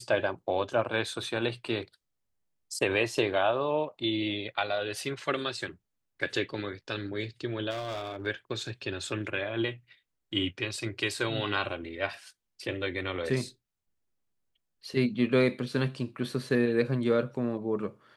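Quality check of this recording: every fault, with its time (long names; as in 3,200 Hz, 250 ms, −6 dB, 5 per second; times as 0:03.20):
0:07.70–0:08.27: clipping −31.5 dBFS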